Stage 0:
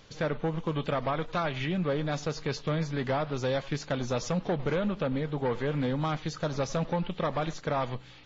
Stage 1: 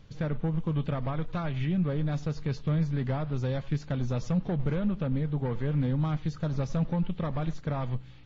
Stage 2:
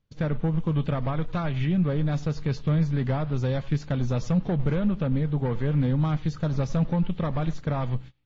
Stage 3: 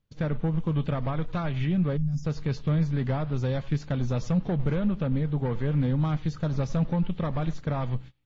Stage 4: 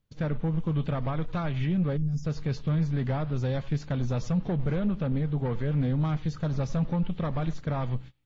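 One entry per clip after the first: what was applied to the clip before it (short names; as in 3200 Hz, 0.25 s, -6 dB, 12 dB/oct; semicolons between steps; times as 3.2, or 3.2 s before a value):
tone controls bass +14 dB, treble -4 dB; gain -7 dB
gate -40 dBFS, range -26 dB; gain +4 dB
spectral gain 1.97–2.25, 260–4800 Hz -25 dB; gain -1.5 dB
soft clip -18 dBFS, distortion -21 dB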